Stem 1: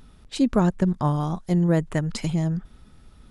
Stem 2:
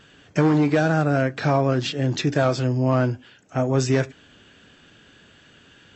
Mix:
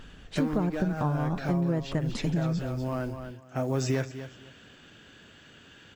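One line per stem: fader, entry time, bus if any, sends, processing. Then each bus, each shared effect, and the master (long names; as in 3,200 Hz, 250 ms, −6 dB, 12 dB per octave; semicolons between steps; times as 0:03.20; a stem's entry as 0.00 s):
+0.5 dB, 0.00 s, no send, no echo send, high-shelf EQ 2,600 Hz −11.5 dB
−1.0 dB, 0.00 s, no send, echo send −19 dB, floating-point word with a short mantissa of 4 bits; automatic ducking −10 dB, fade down 0.85 s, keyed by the first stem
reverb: not used
echo: repeating echo 246 ms, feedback 21%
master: downward compressor 5 to 1, threshold −24 dBFS, peak gain reduction 10 dB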